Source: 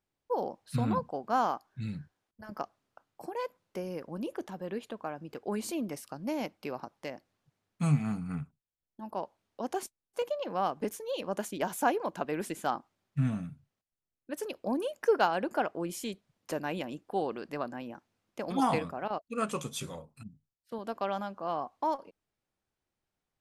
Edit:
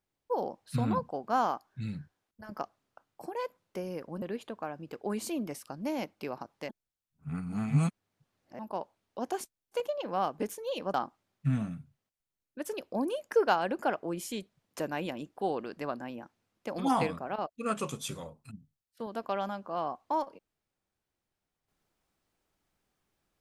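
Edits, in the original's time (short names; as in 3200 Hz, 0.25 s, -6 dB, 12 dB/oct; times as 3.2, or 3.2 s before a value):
4.22–4.64 cut
7.11–9.01 reverse
11.36–12.66 cut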